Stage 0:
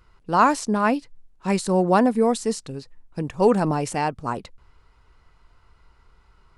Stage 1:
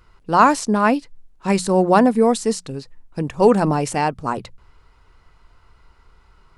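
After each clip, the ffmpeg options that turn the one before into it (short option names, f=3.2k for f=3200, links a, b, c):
-af "bandreject=f=60:t=h:w=6,bandreject=f=120:t=h:w=6,bandreject=f=180:t=h:w=6,volume=4dB"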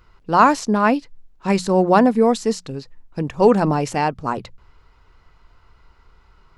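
-af "equalizer=f=9.2k:w=2.8:g=-12"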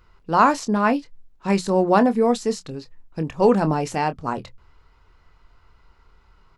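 -filter_complex "[0:a]asplit=2[a][b];[b]adelay=25,volume=-11.5dB[c];[a][c]amix=inputs=2:normalize=0,volume=-3dB"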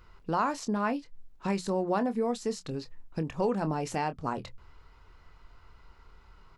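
-af "acompressor=threshold=-31dB:ratio=2.5"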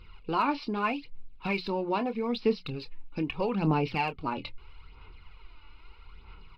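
-af "superequalizer=8b=0.501:11b=0.631:12b=3.16:13b=1.78,aresample=11025,aresample=44100,aphaser=in_gain=1:out_gain=1:delay=3.5:decay=0.52:speed=0.78:type=sinusoidal"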